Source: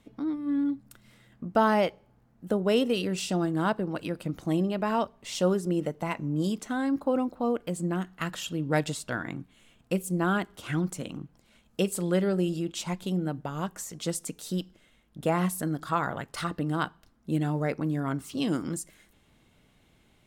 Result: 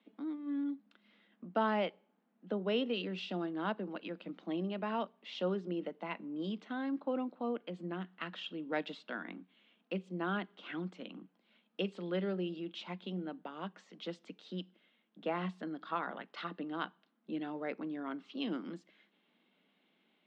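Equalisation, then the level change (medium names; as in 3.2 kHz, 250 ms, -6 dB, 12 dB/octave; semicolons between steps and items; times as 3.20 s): steep high-pass 180 Hz 72 dB/octave; resonant low-pass 3.4 kHz, resonance Q 2; distance through air 140 m; -9.0 dB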